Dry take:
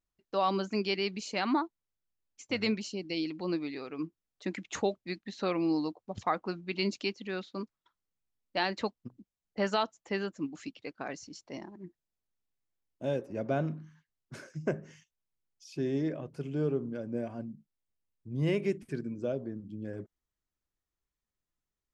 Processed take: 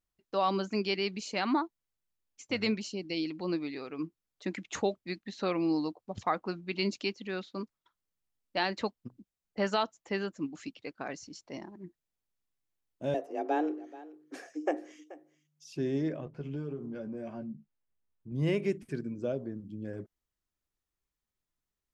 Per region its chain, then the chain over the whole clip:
0:13.14–0:15.75: frequency shifter +150 Hz + low-shelf EQ 120 Hz +11 dB + single-tap delay 431 ms −18.5 dB
0:16.25–0:18.32: low-pass that shuts in the quiet parts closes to 2,100 Hz, open at −26.5 dBFS + downward compressor, threshold −36 dBFS + double-tracking delay 14 ms −4.5 dB
whole clip: no processing

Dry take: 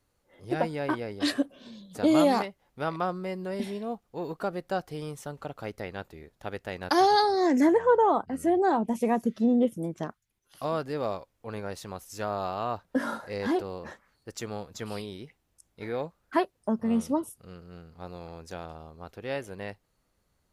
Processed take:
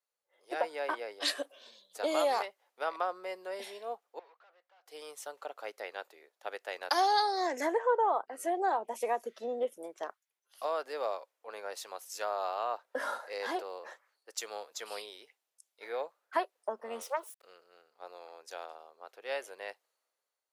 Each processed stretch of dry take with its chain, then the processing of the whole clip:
0:04.19–0:04.86: high-pass filter 900 Hz + tube saturation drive 52 dB, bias 0.4 + high-frequency loss of the air 230 metres
0:17.02–0:17.43: phase distortion by the signal itself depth 0.2 ms + centre clipping without the shift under −54 dBFS + linear-phase brick-wall high-pass 340 Hz
whole clip: high-pass filter 480 Hz 24 dB per octave; downward compressor 2 to 1, threshold −31 dBFS; multiband upward and downward expander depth 40%

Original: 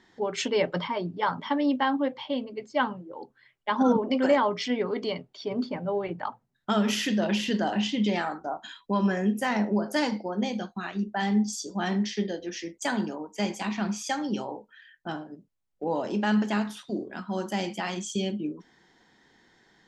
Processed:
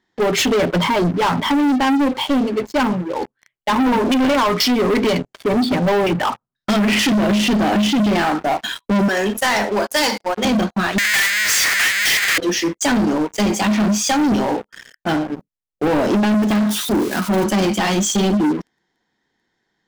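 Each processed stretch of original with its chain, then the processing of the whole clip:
0:03.87–0:06.99: notch filter 850 Hz, Q 21 + low-pass on a step sequencer 4.1 Hz 950–6,900 Hz
0:09.08–0:10.45: noise gate −33 dBFS, range −13 dB + high-pass filter 400 Hz + spectral tilt +2.5 dB per octave
0:10.98–0:12.38: sign of each sample alone + high-pass with resonance 1,900 Hz, resonance Q 3.4 + multiband upward and downward compressor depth 100%
0:16.34–0:17.44: spike at every zero crossing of −30 dBFS + high-pass filter 120 Hz + high-shelf EQ 5,500 Hz −8 dB
whole clip: dynamic equaliser 260 Hz, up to +7 dB, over −38 dBFS, Q 1.2; downward compressor, threshold −23 dBFS; leveller curve on the samples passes 5

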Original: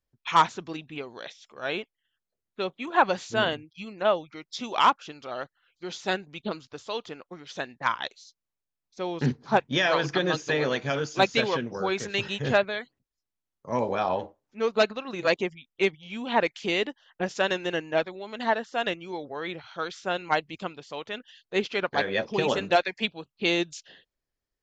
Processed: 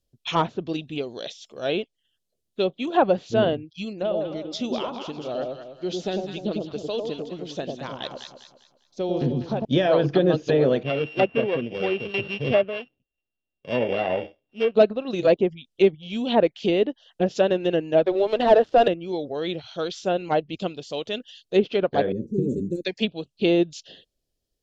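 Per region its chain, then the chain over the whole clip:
0:03.93–0:09.65: high-shelf EQ 3,200 Hz −8 dB + downward compressor 4 to 1, threshold −29 dBFS + delay that swaps between a low-pass and a high-pass 100 ms, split 880 Hz, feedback 59%, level −2 dB
0:10.83–0:14.75: samples sorted by size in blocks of 16 samples + low-pass filter 3,200 Hz 24 dB per octave + low-shelf EQ 400 Hz −7 dB
0:18.06–0:18.88: high-pass filter 320 Hz 24 dB per octave + leveller curve on the samples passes 3
0:22.12–0:22.85: inverse Chebyshev band-stop filter 650–5,500 Hz + high-shelf EQ 4,800 Hz +11.5 dB
whole clip: treble cut that deepens with the level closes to 1,700 Hz, closed at −23.5 dBFS; flat-topped bell 1,400 Hz −12.5 dB; level +8 dB

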